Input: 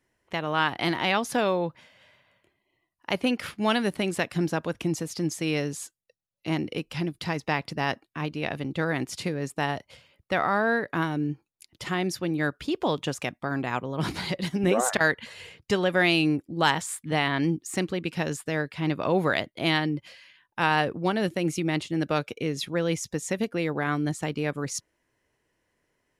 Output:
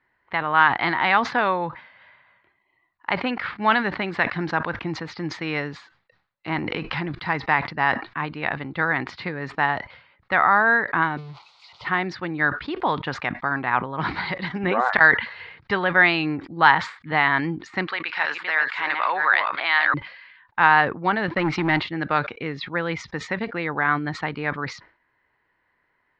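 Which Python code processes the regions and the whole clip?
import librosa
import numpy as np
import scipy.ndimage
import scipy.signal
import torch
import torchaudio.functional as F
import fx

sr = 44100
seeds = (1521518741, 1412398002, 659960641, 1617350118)

y = fx.chain(x, sr, fx.transient(attack_db=1, sustain_db=11),
    fx.env_flatten(amount_pct=50), at=(6.55, 7.15))
y = fx.chain(y, sr, fx.crossing_spikes(level_db=-27.5),
    fx.fixed_phaser(hz=710.0, stages=4),
    fx.doppler_dist(depth_ms=0.21), at=(11.17, 11.85))
y = fx.chain(y, sr, fx.reverse_delay(ms=346, wet_db=-5),
    fx.highpass(hz=1000.0, slope=12),
    fx.env_flatten(amount_pct=50), at=(17.87, 19.94))
y = fx.chain(y, sr, fx.high_shelf(hz=5800.0, db=-4.5),
    fx.notch(hz=6600.0, q=9.8),
    fx.leveller(passes=2), at=(21.28, 21.8))
y = scipy.signal.sosfilt(scipy.signal.ellip(4, 1.0, 80, 4300.0, 'lowpass', fs=sr, output='sos'), y)
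y = fx.band_shelf(y, sr, hz=1300.0, db=10.5, octaves=1.7)
y = fx.sustainer(y, sr, db_per_s=130.0)
y = F.gain(torch.from_numpy(y), -1.0).numpy()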